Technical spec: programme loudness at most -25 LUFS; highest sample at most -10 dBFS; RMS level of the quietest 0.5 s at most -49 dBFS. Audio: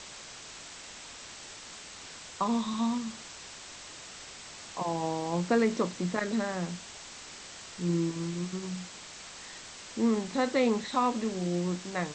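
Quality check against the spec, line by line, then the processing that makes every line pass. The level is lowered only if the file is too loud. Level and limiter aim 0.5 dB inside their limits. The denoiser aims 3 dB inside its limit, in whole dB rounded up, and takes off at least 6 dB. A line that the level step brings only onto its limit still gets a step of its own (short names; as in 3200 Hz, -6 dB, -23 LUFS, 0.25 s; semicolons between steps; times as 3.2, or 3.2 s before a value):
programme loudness -31.0 LUFS: OK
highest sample -14.5 dBFS: OK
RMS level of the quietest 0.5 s -46 dBFS: fail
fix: denoiser 6 dB, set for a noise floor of -46 dBFS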